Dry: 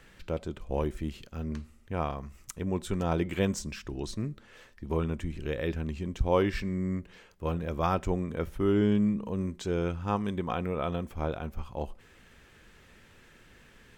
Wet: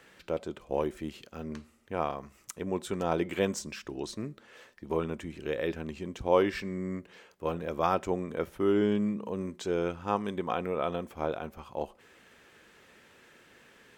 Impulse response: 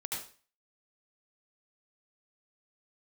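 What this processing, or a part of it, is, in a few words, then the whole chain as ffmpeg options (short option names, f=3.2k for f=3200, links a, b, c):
filter by subtraction: -filter_complex "[0:a]asplit=2[a][b];[b]lowpass=460,volume=-1[c];[a][c]amix=inputs=2:normalize=0"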